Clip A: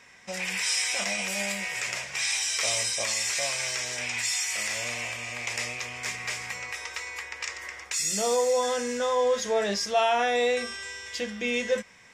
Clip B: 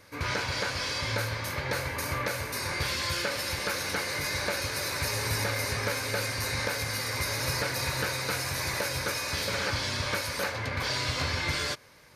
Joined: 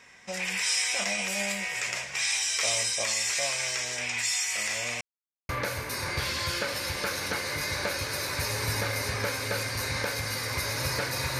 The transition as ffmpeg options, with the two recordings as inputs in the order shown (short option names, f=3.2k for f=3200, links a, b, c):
-filter_complex "[0:a]apad=whole_dur=11.39,atrim=end=11.39,asplit=2[a][b];[a]atrim=end=5.01,asetpts=PTS-STARTPTS,afade=t=out:st=5.006:d=0.004:c=hsin[c];[b]atrim=start=5.01:end=5.49,asetpts=PTS-STARTPTS,volume=0[d];[1:a]atrim=start=2.12:end=8.02,asetpts=PTS-STARTPTS,afade=t=in:d=0.004:c=hsin[e];[c][d][e]concat=n=3:v=0:a=1"